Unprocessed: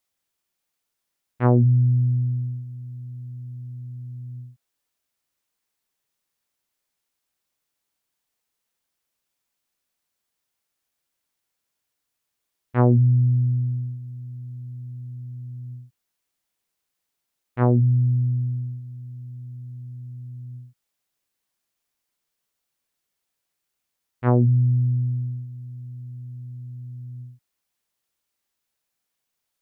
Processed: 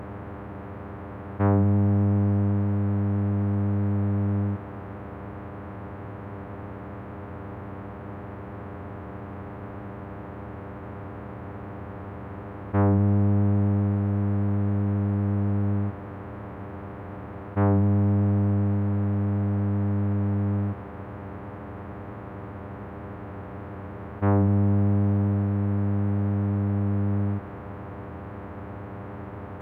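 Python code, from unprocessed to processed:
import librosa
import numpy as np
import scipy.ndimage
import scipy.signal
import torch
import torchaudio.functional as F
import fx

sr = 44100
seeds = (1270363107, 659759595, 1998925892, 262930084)

y = fx.bin_compress(x, sr, power=0.2)
y = fx.pitch_keep_formants(y, sr, semitones=-3.5)
y = y * 10.0 ** (-5.5 / 20.0)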